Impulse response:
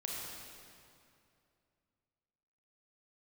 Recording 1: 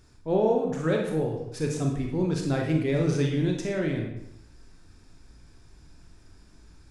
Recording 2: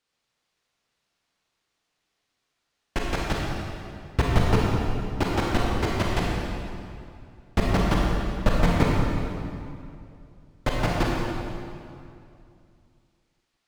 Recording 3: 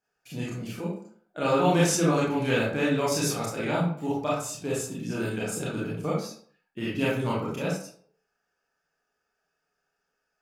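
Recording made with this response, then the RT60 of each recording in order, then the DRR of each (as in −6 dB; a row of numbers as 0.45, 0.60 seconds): 2; 0.85, 2.5, 0.55 seconds; 0.5, −3.0, −7.0 decibels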